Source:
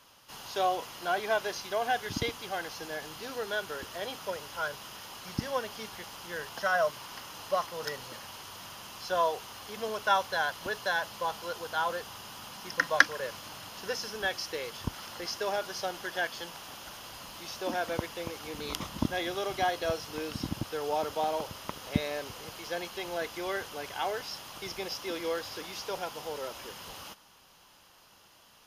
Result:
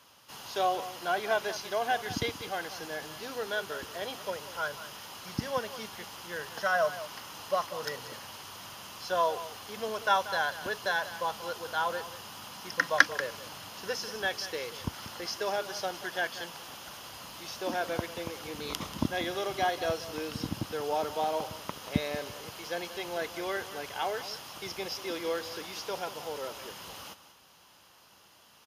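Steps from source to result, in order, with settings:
high-pass filter 64 Hz
on a send: single-tap delay 186 ms −14 dB

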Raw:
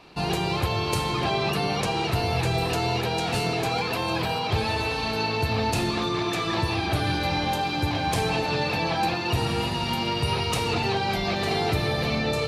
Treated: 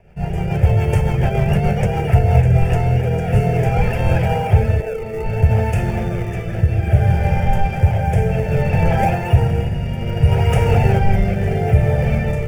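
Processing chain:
0:04.80–0:05.26: loudspeaker in its box 310–4,400 Hz, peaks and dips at 450 Hz +7 dB, 1,700 Hz −9 dB, 3,100 Hz −9 dB
rotating-speaker cabinet horn 7 Hz, later 0.6 Hz, at 0:01.89
in parallel at −4.5 dB: sample-and-hold swept by an LFO 32×, swing 160% 0.83 Hz
on the sum: spectral tilt −2.5 dB per octave
phaser with its sweep stopped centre 1,100 Hz, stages 6
automatic gain control gain up to 9.5 dB

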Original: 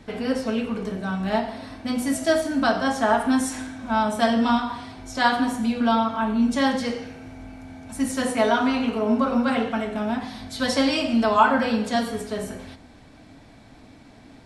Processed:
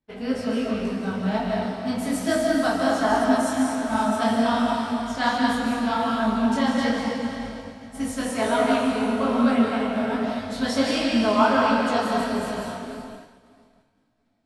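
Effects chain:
feedback delay with all-pass diffusion 544 ms, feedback 40%, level −9 dB
comb and all-pass reverb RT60 1.3 s, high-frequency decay 0.9×, pre-delay 115 ms, DRR 0.5 dB
downward expander −27 dBFS
parametric band 180 Hz +2.5 dB 1.2 octaves
micro pitch shift up and down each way 44 cents

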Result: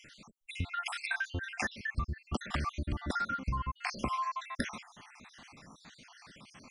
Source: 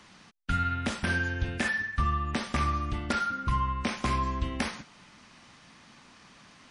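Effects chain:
time-frequency cells dropped at random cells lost 63%
downward compressor 6 to 1, threshold −34 dBFS, peak gain reduction 11 dB
level +3.5 dB

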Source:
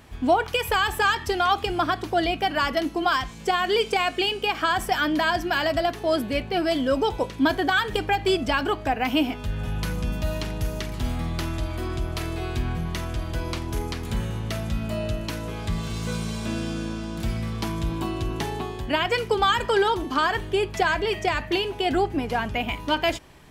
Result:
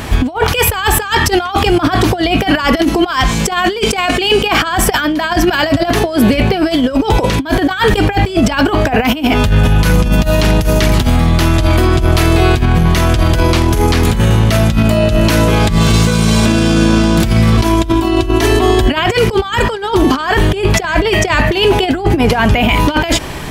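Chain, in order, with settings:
0:17.57–0:18.91: comb filter 3 ms, depth 89%
compressor whose output falls as the input rises −29 dBFS, ratio −0.5
boost into a limiter +23.5 dB
level −1 dB

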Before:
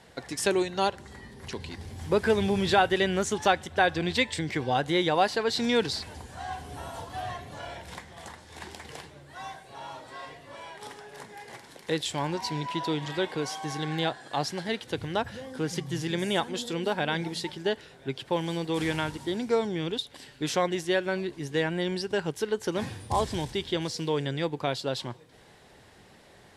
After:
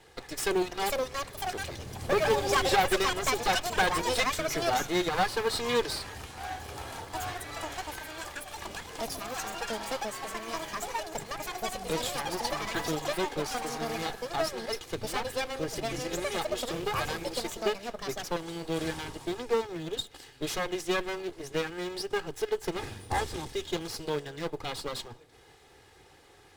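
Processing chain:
lower of the sound and its delayed copy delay 2.4 ms
delay with pitch and tempo change per echo 594 ms, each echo +6 semitones, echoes 2
in parallel at −8 dB: floating-point word with a short mantissa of 2 bits
on the sum: level −3.5 dB

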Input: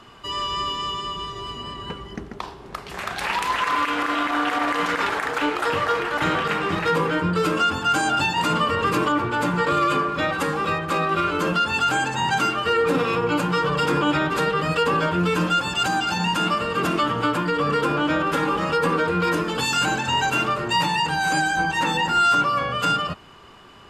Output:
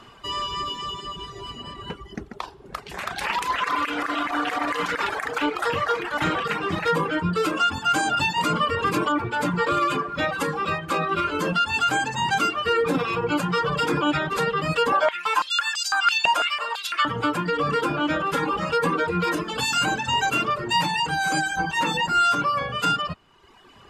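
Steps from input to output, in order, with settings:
reverb reduction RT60 1.2 s
0:14.92–0:17.05: high-pass on a step sequencer 6 Hz 680–5,100 Hz

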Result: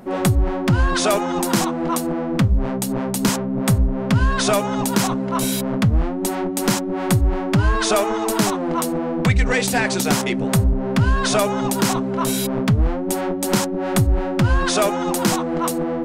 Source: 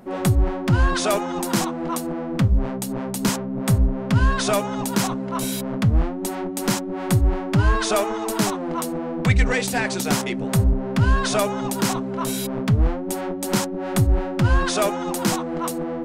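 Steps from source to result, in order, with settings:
downward compressor 3 to 1, threshold −18 dBFS, peak gain reduction 5 dB
level +4.5 dB

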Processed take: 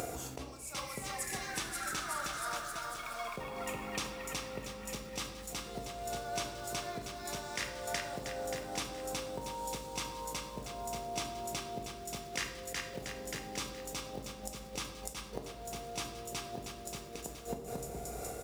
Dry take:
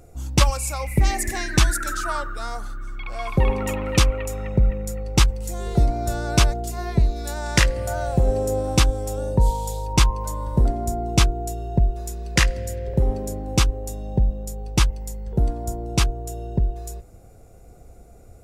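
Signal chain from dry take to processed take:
bouncing-ball delay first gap 370 ms, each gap 0.85×, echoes 5
gate with flip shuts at −21 dBFS, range −30 dB
in parallel at −4 dB: log-companded quantiser 6 bits
on the sum: downward compressor 6 to 1, threshold −46 dBFS, peak gain reduction 24 dB
high-pass filter 620 Hz 6 dB per octave
on a send at −4 dB: convolution reverb RT60 1.1 s, pre-delay 4 ms
on the sum: level that may rise only so fast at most 210 dB per second
level +16.5 dB

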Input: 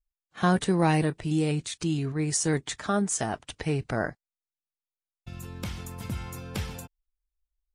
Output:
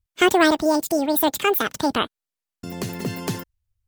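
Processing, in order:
wrong playback speed 7.5 ips tape played at 15 ips
level +7 dB

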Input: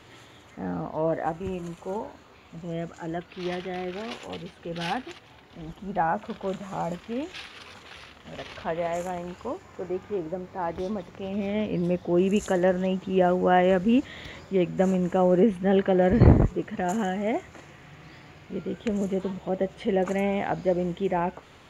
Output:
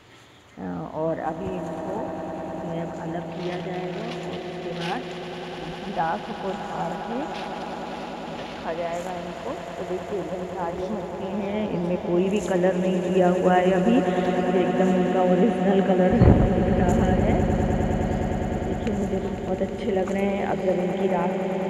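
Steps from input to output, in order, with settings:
echo that builds up and dies away 102 ms, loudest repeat 8, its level −12 dB

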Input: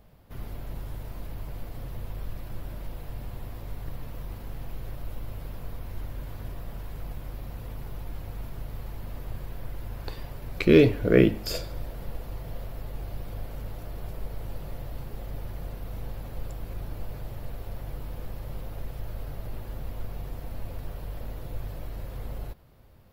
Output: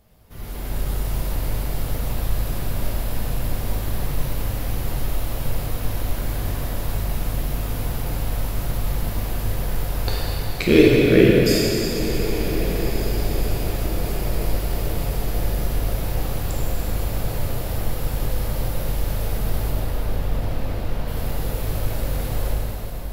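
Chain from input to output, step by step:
parametric band 9,000 Hz +9 dB 2.1 octaves
automatic gain control gain up to 10 dB
0:19.70–0:21.08: high-frequency loss of the air 160 metres
feedback delay with all-pass diffusion 1,508 ms, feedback 48%, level −12.5 dB
dense smooth reverb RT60 3.7 s, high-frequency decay 0.9×, DRR −4.5 dB
level −3 dB

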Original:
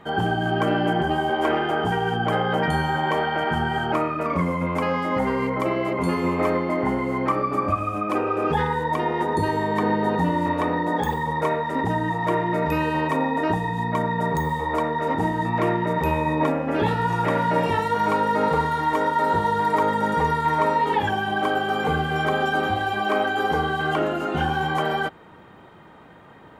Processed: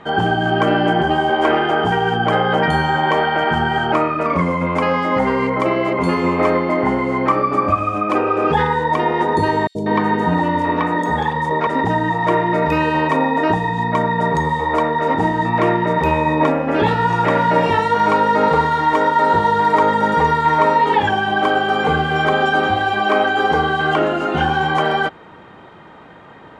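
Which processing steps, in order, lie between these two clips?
low-pass filter 6,600 Hz 12 dB per octave
low-shelf EQ 240 Hz −4 dB
0:09.67–0:11.67: three-band delay without the direct sound highs, lows, mids 80/190 ms, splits 550/5,200 Hz
level +7 dB

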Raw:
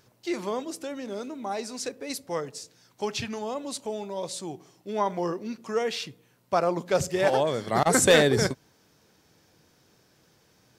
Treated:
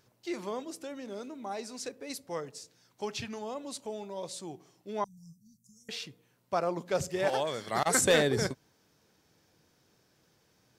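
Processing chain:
0:05.04–0:05.89: inverse Chebyshev band-stop filter 340–3,000 Hz, stop band 50 dB
0:07.29–0:08.01: tilt shelving filter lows −4.5 dB, about 800 Hz
level −6 dB

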